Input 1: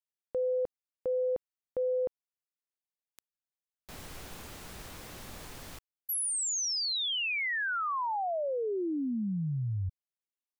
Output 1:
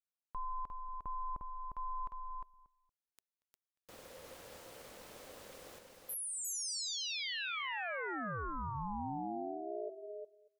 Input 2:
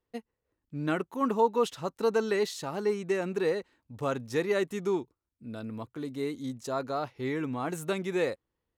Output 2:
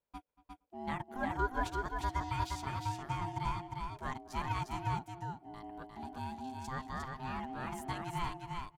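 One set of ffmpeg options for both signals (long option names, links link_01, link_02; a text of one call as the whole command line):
ffmpeg -i in.wav -filter_complex "[0:a]equalizer=frequency=130:width_type=o:width=0.26:gain=-6.5,aeval=exprs='0.2*(cos(1*acos(clip(val(0)/0.2,-1,1)))-cos(1*PI/2))+0.00631*(cos(2*acos(clip(val(0)/0.2,-1,1)))-cos(2*PI/2))':channel_layout=same,asplit=2[link_01][link_02];[link_02]adelay=233,lowpass=frequency=2400:poles=1,volume=-20dB,asplit=2[link_03][link_04];[link_04]adelay=233,lowpass=frequency=2400:poles=1,volume=0.2[link_05];[link_03][link_05]amix=inputs=2:normalize=0[link_06];[link_01][link_06]amix=inputs=2:normalize=0,aeval=exprs='val(0)*sin(2*PI*520*n/s)':channel_layout=same,asplit=2[link_07][link_08];[link_08]aecho=0:1:354:0.631[link_09];[link_07][link_09]amix=inputs=2:normalize=0,volume=-6dB" out.wav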